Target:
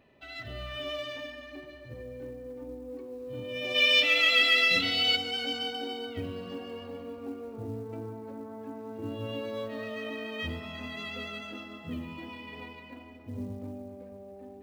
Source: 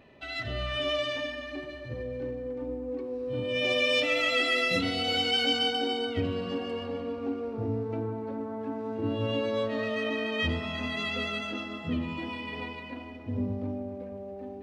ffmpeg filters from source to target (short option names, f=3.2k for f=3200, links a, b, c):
-filter_complex "[0:a]asplit=3[a][b][c];[a]afade=t=out:st=3.74:d=0.02[d];[b]equalizer=f=3.3k:w=0.54:g=13,afade=t=in:st=3.74:d=0.02,afade=t=out:st=5.15:d=0.02[e];[c]afade=t=in:st=5.15:d=0.02[f];[d][e][f]amix=inputs=3:normalize=0,acrusher=bits=8:mode=log:mix=0:aa=0.000001,volume=-6.5dB"